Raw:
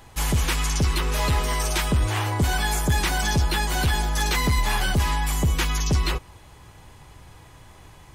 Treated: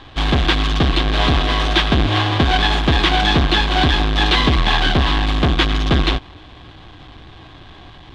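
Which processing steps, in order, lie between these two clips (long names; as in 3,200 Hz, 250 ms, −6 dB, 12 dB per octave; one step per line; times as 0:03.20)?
each half-wave held at its own peak
low-pass with resonance 3,500 Hz, resonance Q 4.3
hollow resonant body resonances 310/730/1,100/1,600 Hz, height 9 dB, ringing for 35 ms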